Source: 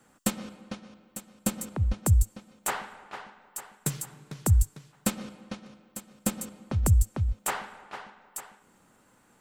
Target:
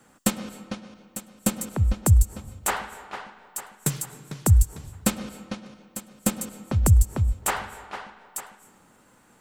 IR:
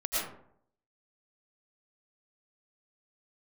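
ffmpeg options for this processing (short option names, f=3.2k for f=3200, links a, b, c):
-filter_complex "[0:a]asplit=2[a][b];[1:a]atrim=start_sample=2205,asetrate=30429,aresample=44100,adelay=103[c];[b][c]afir=irnorm=-1:irlink=0,volume=-30dB[d];[a][d]amix=inputs=2:normalize=0,volume=4.5dB"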